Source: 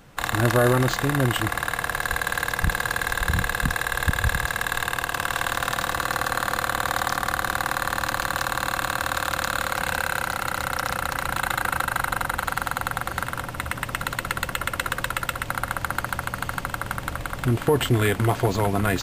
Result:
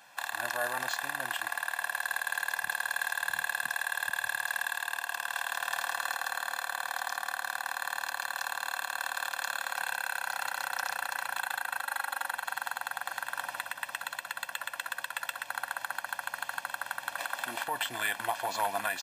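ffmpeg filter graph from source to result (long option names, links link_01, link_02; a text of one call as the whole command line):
ffmpeg -i in.wav -filter_complex "[0:a]asettb=1/sr,asplit=3[link_01][link_02][link_03];[link_01]atrim=end=11.834[link_04];[link_02]atrim=start=11.83:end=12.29,asetpts=PTS-STARTPTS,afade=type=in:duration=0.004:curve=qsin,afade=type=out:start_time=0.456:duration=0.004:curve=qsin,highpass=220,aecho=1:1:3.6:0.48,atrim=end_sample=20286[link_05];[link_03]atrim=start=12.286[link_06];[link_04][link_05]acrossfade=duration=0.004:curve1=hsin:curve2=qsin[link_07];[link_07][link_06]acrossfade=duration=0.004:curve1=qsin:curve2=hsin,asettb=1/sr,asplit=3[link_08][link_09][link_10];[link_08]atrim=end=17.184[link_11];[link_09]atrim=start=17.18:end=17.64,asetpts=PTS-STARTPTS,afade=type=in:duration=0.004:curve=qsin,afade=type=out:start_time=0.456:duration=0.004:curve=qsin,highpass=220,acontrast=84[link_12];[link_10]atrim=start=17.636[link_13];[link_11][link_12]acrossfade=duration=0.004:curve1=hsin:curve2=qsin[link_14];[link_14][link_13]acrossfade=duration=0.004:curve1=qsin:curve2=hsin,highpass=730,aecho=1:1:1.2:0.75,alimiter=limit=-15.5dB:level=0:latency=1:release=396,volume=-2.5dB" out.wav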